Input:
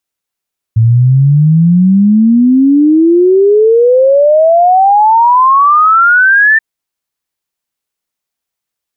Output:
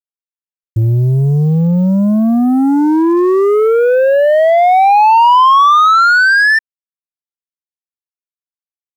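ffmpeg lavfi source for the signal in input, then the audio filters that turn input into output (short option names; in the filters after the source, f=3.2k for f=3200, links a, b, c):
-f lavfi -i "aevalsrc='0.668*clip(min(t,5.83-t)/0.01,0,1)*sin(2*PI*110*5.83/log(1800/110)*(exp(log(1800/110)*t/5.83)-1))':d=5.83:s=44100"
-af "acrusher=bits=7:dc=4:mix=0:aa=0.000001,asoftclip=type=tanh:threshold=-8.5dB,adynamicequalizer=threshold=0.0794:dfrequency=1000:dqfactor=1.1:tfrequency=1000:tqfactor=1.1:attack=5:release=100:ratio=0.375:range=2:mode=boostabove:tftype=bell"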